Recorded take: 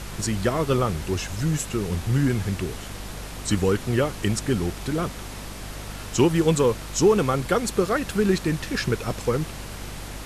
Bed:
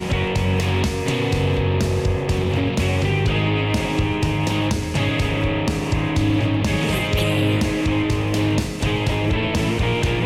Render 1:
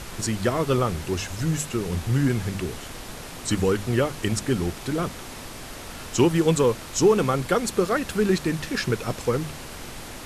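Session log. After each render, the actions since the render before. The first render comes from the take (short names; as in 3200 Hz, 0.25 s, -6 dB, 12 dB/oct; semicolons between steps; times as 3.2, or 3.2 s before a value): notches 50/100/150/200 Hz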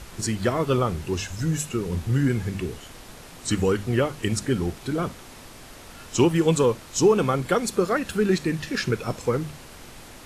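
noise print and reduce 6 dB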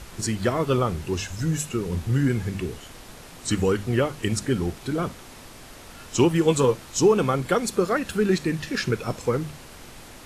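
6.46–6.92 doubler 15 ms -7 dB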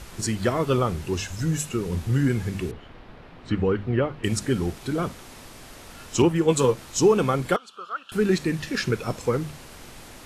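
2.71–4.24 air absorption 370 m; 6.22–6.77 three-band expander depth 70%; 7.56–8.12 double band-pass 2000 Hz, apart 1.2 oct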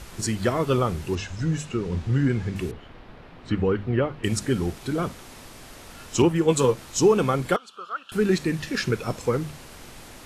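1.15–2.56 air absorption 91 m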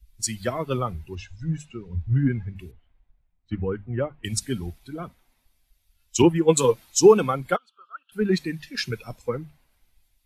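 per-bin expansion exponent 1.5; three-band expander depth 70%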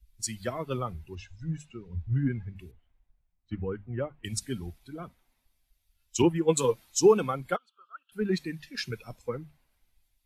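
gain -6 dB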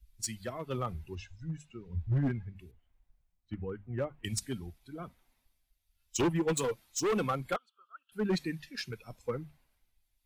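hard clip -24 dBFS, distortion -6 dB; tremolo 0.95 Hz, depth 47%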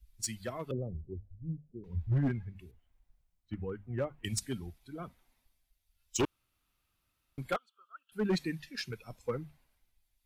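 0.71–1.84 steep low-pass 570 Hz; 6.25–7.38 room tone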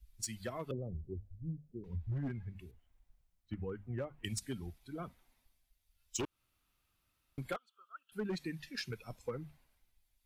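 compressor 5:1, threshold -36 dBFS, peak gain reduction 9.5 dB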